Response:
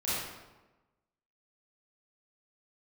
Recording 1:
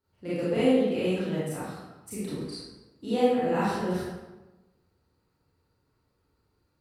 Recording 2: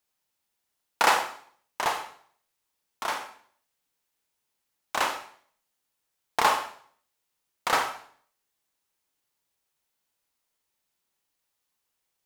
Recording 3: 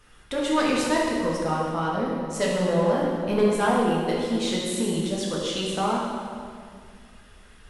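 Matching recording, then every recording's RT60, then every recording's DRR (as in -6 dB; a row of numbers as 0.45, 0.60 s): 1; 1.1, 0.55, 2.2 s; -11.5, 5.0, -5.0 dB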